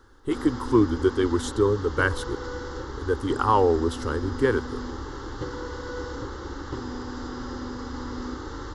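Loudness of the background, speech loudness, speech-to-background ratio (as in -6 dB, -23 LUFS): -35.0 LUFS, -24.5 LUFS, 10.5 dB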